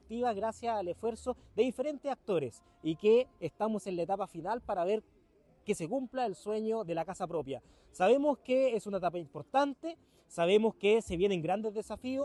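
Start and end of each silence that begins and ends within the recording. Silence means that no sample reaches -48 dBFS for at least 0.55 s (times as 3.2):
5–5.67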